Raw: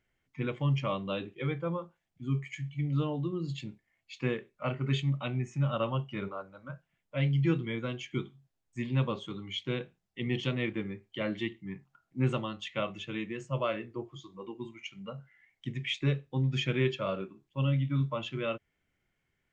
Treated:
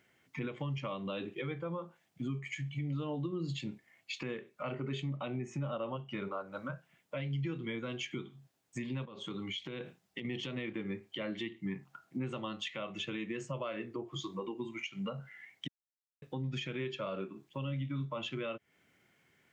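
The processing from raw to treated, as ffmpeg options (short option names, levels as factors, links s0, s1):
-filter_complex "[0:a]asettb=1/sr,asplit=3[s0][s1][s2];[s0]atrim=end=4.724[s3];[s1]atrim=start=4.72:end=5.97,asetpts=PTS-STARTPTS,afade=t=in:d=0.004:c=qsin,afade=t=out:st=1.246:d=0.004:c=qsin,equalizer=f=440:t=o:w=2.4:g=7[s4];[s2]atrim=start=5.966[s5];[s3][s4]acrossfade=d=0.004:c1=hsin:c2=qsin[s6];[s6][s5]acrossfade=d=0.004:c1=qsin:c2=hsin,asettb=1/sr,asplit=3[s7][s8][s9];[s7]atrim=end=9.054[s10];[s8]atrim=start=9.05:end=10.25,asetpts=PTS-STARTPTS,afade=t=in:d=0.004:c=qsin,afade=t=out:st=1.196:d=0.004:c=qsin,acompressor=threshold=0.00562:ratio=8:attack=3.2:release=140:knee=1:detection=peak[s11];[s9]atrim=start=10.246[s12];[s10][s11]acrossfade=d=0.004:c1=hsin:c2=qsin[s13];[s13][s12]acrossfade=d=0.004:c1=qsin:c2=hsin,asplit=3[s14][s15][s16];[s14]atrim=end=15.68,asetpts=PTS-STARTPTS,afade=t=out:st=15.676:d=0.004:c=hsin[s17];[s15]atrim=start=15.68:end=16.22,asetpts=PTS-STARTPTS,volume=0[s18];[s16]atrim=start=16.22,asetpts=PTS-STARTPTS,afade=t=in:d=0.004:c=hsin[s19];[s17][s18][s19]concat=n=3:v=0:a=1,acompressor=threshold=0.00631:ratio=2.5,highpass=150,alimiter=level_in=6.31:limit=0.0631:level=0:latency=1:release=178,volume=0.158,volume=3.55"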